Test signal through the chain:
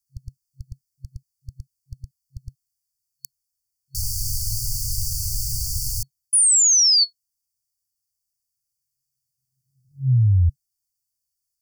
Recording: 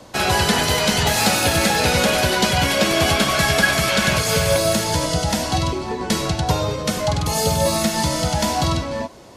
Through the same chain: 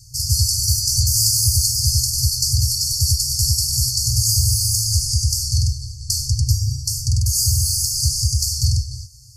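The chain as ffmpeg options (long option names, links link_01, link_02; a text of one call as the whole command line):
ffmpeg -i in.wav -af "afftfilt=real='re*(1-between(b*sr/4096,130,4400))':imag='im*(1-between(b*sr/4096,130,4400))':win_size=4096:overlap=0.75,volume=6.5dB" out.wav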